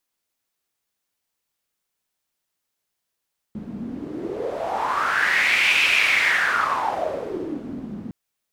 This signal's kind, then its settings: wind-like swept noise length 4.56 s, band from 210 Hz, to 2500 Hz, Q 5.9, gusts 1, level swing 15 dB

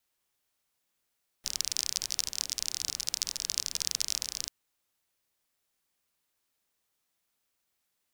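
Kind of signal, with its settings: rain from filtered ticks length 3.04 s, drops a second 36, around 5400 Hz, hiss -19.5 dB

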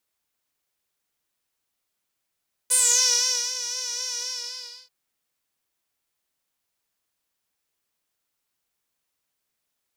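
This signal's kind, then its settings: synth patch with vibrato B4, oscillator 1 saw, sub -27 dB, noise -15 dB, filter bandpass, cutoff 4800 Hz, Q 8.5, filter envelope 1 oct, filter decay 0.32 s, filter sustain 25%, attack 17 ms, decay 0.81 s, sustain -13.5 dB, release 0.71 s, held 1.48 s, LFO 3.9 Hz, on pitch 49 cents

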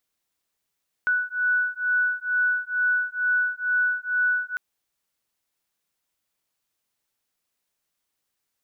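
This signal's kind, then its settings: beating tones 1480 Hz, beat 2.2 Hz, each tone -24 dBFS 3.50 s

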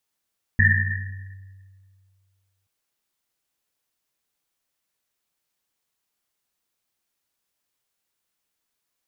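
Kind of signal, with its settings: Risset drum length 2.08 s, pitch 96 Hz, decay 2.18 s, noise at 1800 Hz, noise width 170 Hz, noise 50%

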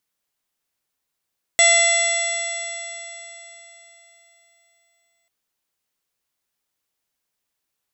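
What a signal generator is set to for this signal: stretched partials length 3.69 s, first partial 678 Hz, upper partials -15.5/3/-8/-2/-9/-19/-9/-14/-10.5/4 dB, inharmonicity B 0.00095, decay 3.78 s, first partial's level -18 dB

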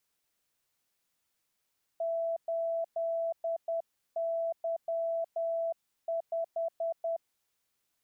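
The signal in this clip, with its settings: Morse "8Y5" 10 wpm 664 Hz -29 dBFS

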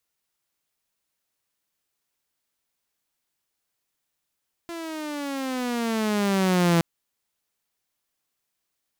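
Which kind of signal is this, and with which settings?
gliding synth tone saw, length 2.12 s, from 342 Hz, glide -12.5 st, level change +16 dB, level -14 dB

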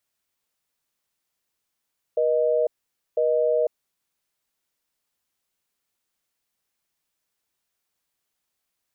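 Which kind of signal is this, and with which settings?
call progress tone busy tone, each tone -21 dBFS 1.64 s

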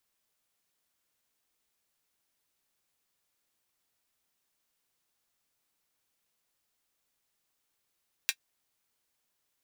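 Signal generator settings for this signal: closed hi-hat, high-pass 2100 Hz, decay 0.07 s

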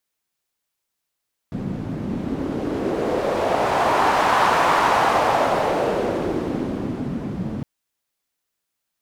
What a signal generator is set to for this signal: wind-like swept noise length 6.11 s, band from 190 Hz, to 980 Hz, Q 1.9, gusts 1, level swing 10 dB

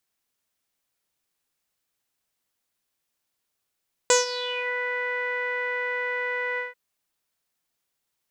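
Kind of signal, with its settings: synth note saw B4 12 dB/oct, low-pass 1900 Hz, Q 7.5, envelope 2 oct, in 0.60 s, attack 1.7 ms, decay 0.15 s, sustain -15.5 dB, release 0.16 s, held 2.48 s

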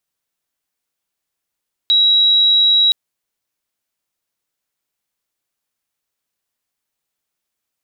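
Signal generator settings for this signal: tone sine 3870 Hz -9 dBFS 1.02 s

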